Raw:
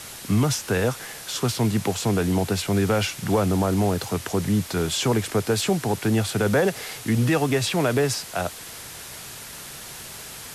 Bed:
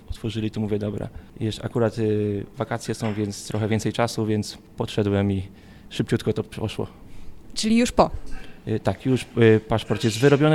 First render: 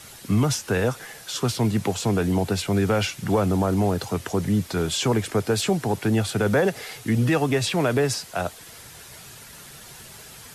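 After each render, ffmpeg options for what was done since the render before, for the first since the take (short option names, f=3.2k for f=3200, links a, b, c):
-af "afftdn=nr=7:nf=-39"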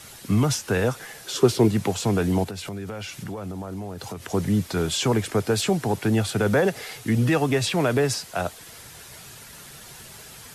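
-filter_complex "[0:a]asettb=1/sr,asplit=3[a][b][c];[a]atrim=end=1.244[d];[b]atrim=start=1.24:end=1.68,asetpts=PTS-STARTPTS,afade=t=in:d=0.004:c=qsin,afade=t=out:st=0.436:d=0.004:c=qsin,equalizer=f=380:t=o:w=0.68:g=12.5[e];[c]atrim=start=1.676[f];[d][e]acrossfade=d=0.004:c1=hsin:c2=qsin[g];[g][f]acrossfade=d=0.004:c1=qsin:c2=hsin,asettb=1/sr,asplit=3[h][i][j];[h]atrim=end=2.444[k];[i]atrim=start=2.44:end=4.32,asetpts=PTS-STARTPTS,afade=t=in:d=0.004:c=qsin,afade=t=out:st=1.876:d=0.004:c=qsin,acompressor=threshold=-30dB:ratio=8:attack=3.2:release=140:knee=1:detection=peak[l];[j]atrim=start=4.316[m];[k][l]acrossfade=d=0.004:c1=hsin:c2=qsin[n];[n][m]acrossfade=d=0.004:c1=qsin:c2=hsin"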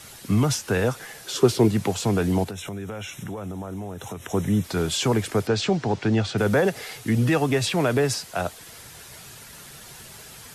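-filter_complex "[0:a]asettb=1/sr,asplit=3[a][b][c];[a]atrim=end=2.534[d];[b]atrim=start=2.53:end=4.64,asetpts=PTS-STARTPTS,afade=t=in:d=0.004:c=qsin,afade=t=out:st=2.106:d=0.004:c=qsin,asuperstop=centerf=4600:order=12:qfactor=3.6[e];[c]atrim=start=4.636[f];[d][e]acrossfade=d=0.004:c1=hsin:c2=qsin[g];[g][f]acrossfade=d=0.004:c1=qsin:c2=hsin,asettb=1/sr,asplit=3[h][i][j];[h]atrim=end=5.474[k];[i]atrim=start=5.47:end=6.38,asetpts=PTS-STARTPTS,afade=t=in:d=0.004:c=qsin,afade=t=out:st=0.906:d=0.004:c=qsin,lowpass=f=6.2k:w=0.5412,lowpass=f=6.2k:w=1.3066[l];[j]atrim=start=6.376[m];[k][l]acrossfade=d=0.004:c1=hsin:c2=qsin[n];[n][m]acrossfade=d=0.004:c1=qsin:c2=hsin"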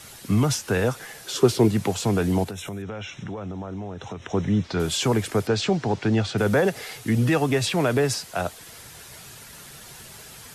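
-filter_complex "[0:a]asettb=1/sr,asplit=3[a][b][c];[a]atrim=end=2.824[d];[b]atrim=start=2.82:end=4.8,asetpts=PTS-STARTPTS,afade=t=in:d=0.004:c=qsin,afade=t=out:st=1.976:d=0.004:c=qsin,lowpass=f=5.6k:w=0.5412,lowpass=f=5.6k:w=1.3066[e];[c]atrim=start=4.796[f];[d][e]acrossfade=d=0.004:c1=hsin:c2=qsin[g];[g][f]acrossfade=d=0.004:c1=qsin:c2=hsin"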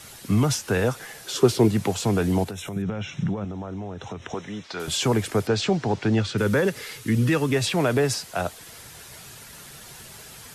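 -filter_complex "[0:a]asettb=1/sr,asplit=3[a][b][c];[a]atrim=end=2.764[d];[b]atrim=start=2.76:end=3.45,asetpts=PTS-STARTPTS,afade=t=in:d=0.004:c=qsin,afade=t=out:st=0.686:d=0.004:c=qsin,equalizer=f=160:w=1.5:g=13.5[e];[c]atrim=start=3.446[f];[d][e]acrossfade=d=0.004:c1=hsin:c2=qsin[g];[g][f]acrossfade=d=0.004:c1=qsin:c2=hsin,asettb=1/sr,asplit=3[h][i][j];[h]atrim=end=4.344[k];[i]atrim=start=4.34:end=4.88,asetpts=PTS-STARTPTS,afade=t=in:d=0.004:c=qsin,afade=t=out:st=0.536:d=0.004:c=qsin,highpass=f=870:p=1[l];[j]atrim=start=4.876[m];[k][l]acrossfade=d=0.004:c1=hsin:c2=qsin[n];[n][m]acrossfade=d=0.004:c1=qsin:c2=hsin,asettb=1/sr,asplit=3[o][p][q];[o]atrim=end=6.194[r];[p]atrim=start=6.19:end=7.56,asetpts=PTS-STARTPTS,afade=t=in:d=0.004:c=qsin,afade=t=out:st=1.366:d=0.004:c=qsin,equalizer=f=720:w=4.4:g=-14.5[s];[q]atrim=start=7.556[t];[r][s]acrossfade=d=0.004:c1=hsin:c2=qsin[u];[u][t]acrossfade=d=0.004:c1=qsin:c2=hsin"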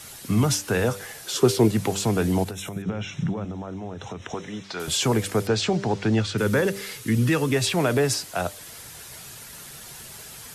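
-af "highshelf=f=6.2k:g=4.5,bandreject=f=98.41:t=h:w=4,bandreject=f=196.82:t=h:w=4,bandreject=f=295.23:t=h:w=4,bandreject=f=393.64:t=h:w=4,bandreject=f=492.05:t=h:w=4,bandreject=f=590.46:t=h:w=4"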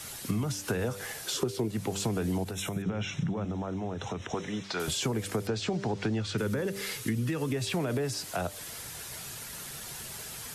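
-filter_complex "[0:a]acrossover=split=470[a][b];[b]alimiter=limit=-21dB:level=0:latency=1:release=113[c];[a][c]amix=inputs=2:normalize=0,acompressor=threshold=-27dB:ratio=8"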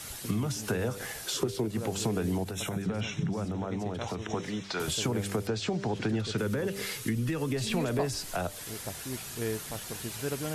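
-filter_complex "[1:a]volume=-18dB[a];[0:a][a]amix=inputs=2:normalize=0"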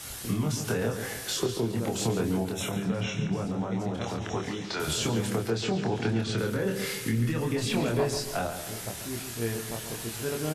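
-filter_complex "[0:a]asplit=2[a][b];[b]adelay=26,volume=-3dB[c];[a][c]amix=inputs=2:normalize=0,asplit=2[d][e];[e]adelay=140,lowpass=f=4.1k:p=1,volume=-8.5dB,asplit=2[f][g];[g]adelay=140,lowpass=f=4.1k:p=1,volume=0.47,asplit=2[h][i];[i]adelay=140,lowpass=f=4.1k:p=1,volume=0.47,asplit=2[j][k];[k]adelay=140,lowpass=f=4.1k:p=1,volume=0.47,asplit=2[l][m];[m]adelay=140,lowpass=f=4.1k:p=1,volume=0.47[n];[f][h][j][l][n]amix=inputs=5:normalize=0[o];[d][o]amix=inputs=2:normalize=0"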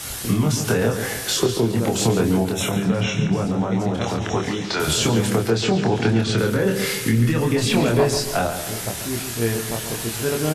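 -af "volume=9dB"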